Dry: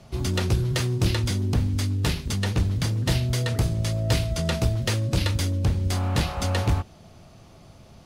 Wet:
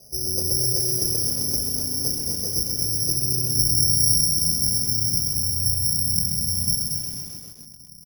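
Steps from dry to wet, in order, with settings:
mains-hum notches 50/100/150/200/250/300/350 Hz
0:03.55–0:04.27: bass and treble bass +11 dB, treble +11 dB
0:05.28–0:05.85: Chebyshev band-stop filter 140–2,600 Hz, order 4
downward compressor 2.5 to 1, threshold −22 dBFS, peak gain reduction 9.5 dB
low-pass filter sweep 520 Hz → 180 Hz, 0:02.00–0:05.61
bit-depth reduction 12 bits, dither none
echo with shifted repeats 227 ms, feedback 44%, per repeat +30 Hz, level −7 dB
spring reverb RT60 2.2 s, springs 35/58 ms, chirp 70 ms, DRR 17 dB
bad sample-rate conversion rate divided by 8×, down filtered, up zero stuff
feedback echo at a low word length 130 ms, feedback 80%, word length 4 bits, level −7.5 dB
level −9.5 dB

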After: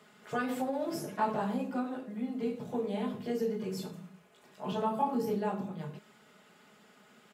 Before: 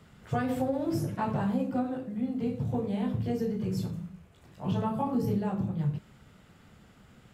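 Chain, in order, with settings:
high-pass filter 330 Hz 12 dB per octave
comb filter 4.8 ms, depth 52%

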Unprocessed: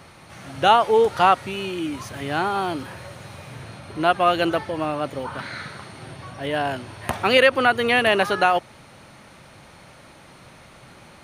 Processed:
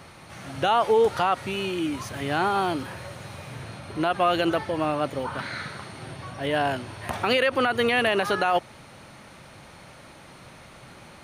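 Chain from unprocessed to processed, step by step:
brickwall limiter −12 dBFS, peak gain reduction 9 dB

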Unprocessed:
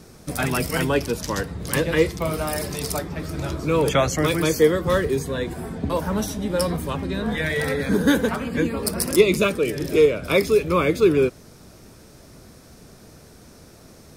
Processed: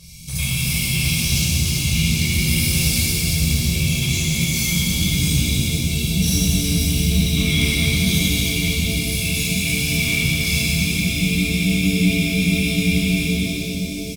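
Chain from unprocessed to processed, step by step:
brick-wall band-stop 200–2,100 Hz
low-shelf EQ 180 Hz −6.5 dB
comb filter 1.8 ms, depth 82%
compressor whose output falls as the input rises −29 dBFS, ratio −0.5
gain into a clipping stage and back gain 24 dB
on a send: delay that swaps between a low-pass and a high-pass 116 ms, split 820 Hz, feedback 87%, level −9.5 dB
on the sum: frozen spectrum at 0:10.75, 2.49 s
reverb with rising layers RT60 3.6 s, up +7 semitones, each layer −8 dB, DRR −10.5 dB

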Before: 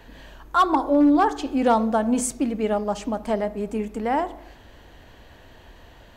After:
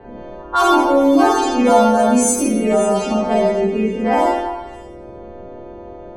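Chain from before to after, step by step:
every partial snapped to a pitch grid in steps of 2 semitones
low-pass that shuts in the quiet parts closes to 620 Hz, open at −17 dBFS
parametric band 390 Hz +3.5 dB 0.77 octaves
echo through a band-pass that steps 135 ms, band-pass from 420 Hz, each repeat 1.4 octaves, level −10.5 dB
four-comb reverb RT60 0.73 s, combs from 33 ms, DRR −6 dB
multiband upward and downward compressor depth 40%

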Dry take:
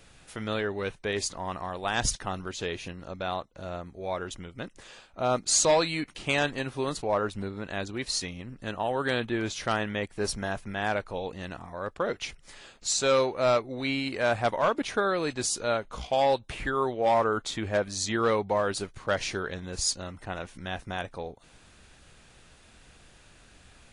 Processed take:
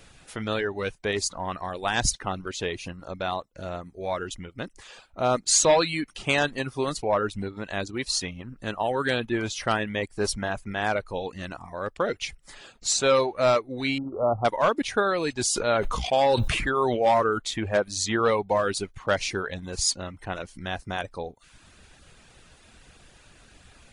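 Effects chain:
reverb reduction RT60 0.62 s
0:13.98–0:14.45: linear-phase brick-wall low-pass 1,400 Hz
0:15.36–0:17.11: level that may fall only so fast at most 28 dB per second
level +3.5 dB

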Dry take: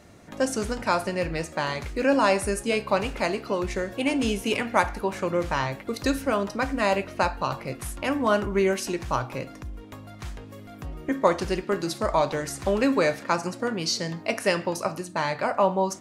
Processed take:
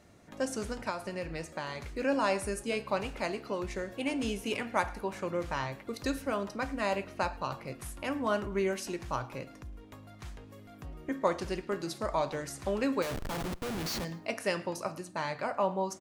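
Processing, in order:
0:00.89–0:01.86: downward compressor, threshold −24 dBFS, peak gain reduction 7 dB
0:13.02–0:14.05: comparator with hysteresis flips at −32 dBFS
on a send: repeating echo 108 ms, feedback 37%, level −23.5 dB
on the sum: level −8 dB

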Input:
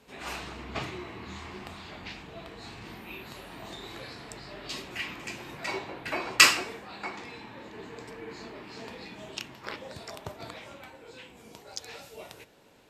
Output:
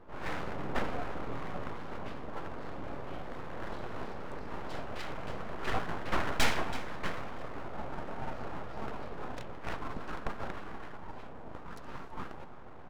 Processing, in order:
Savitzky-Golay smoothing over 65 samples
reversed playback
upward compression, threshold −47 dBFS
reversed playback
full-wave rectification
on a send: repeating echo 329 ms, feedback 39%, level −17.5 dB
on the sum: soft clipping −23 dBFS, distortion −18 dB
one half of a high-frequency compander decoder only
level +8 dB

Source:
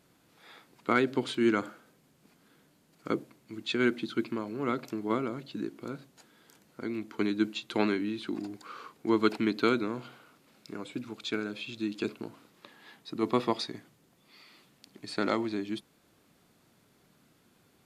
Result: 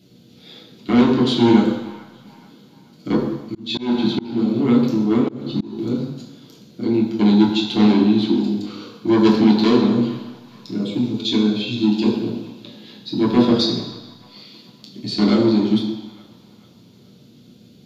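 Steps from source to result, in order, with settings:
octave-band graphic EQ 125/250/500/1,000/2,000/4,000/8,000 Hz +12/+9/+9/−11/−8/+6/−10 dB
soft clipping −15.5 dBFS, distortion −10 dB
high-shelf EQ 2,100 Hz +9.5 dB
delay with a band-pass on its return 435 ms, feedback 46%, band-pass 1,400 Hz, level −19 dB
convolution reverb RT60 1.1 s, pre-delay 3 ms, DRR −5.5 dB
0:03.19–0:05.79: volume swells 291 ms
level −3.5 dB

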